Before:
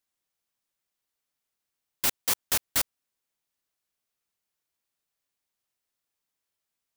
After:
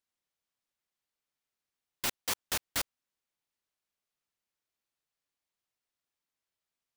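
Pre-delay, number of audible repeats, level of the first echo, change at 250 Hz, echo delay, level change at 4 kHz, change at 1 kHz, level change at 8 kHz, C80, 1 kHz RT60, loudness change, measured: none, none, none, -3.5 dB, none, -4.0 dB, -3.5 dB, -7.0 dB, none, none, -7.0 dB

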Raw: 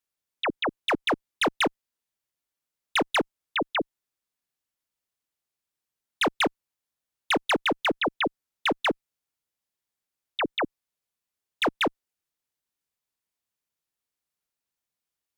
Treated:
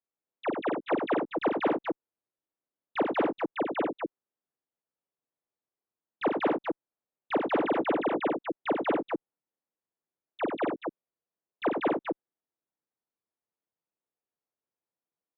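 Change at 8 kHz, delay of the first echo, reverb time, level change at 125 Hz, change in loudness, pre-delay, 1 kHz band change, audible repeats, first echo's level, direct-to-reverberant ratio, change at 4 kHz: under -35 dB, 41 ms, none, -2.5 dB, -3.5 dB, none, -2.5 dB, 3, -5.5 dB, none, -17.0 dB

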